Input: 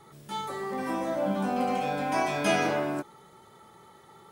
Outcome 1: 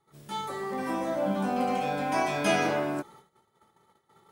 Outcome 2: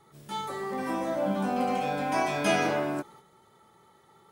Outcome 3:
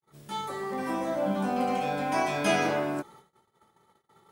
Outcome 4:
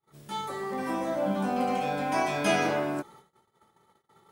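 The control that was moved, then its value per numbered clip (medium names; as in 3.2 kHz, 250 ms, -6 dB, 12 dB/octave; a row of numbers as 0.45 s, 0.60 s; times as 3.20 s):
gate, range: -19 dB, -6 dB, -58 dB, -34 dB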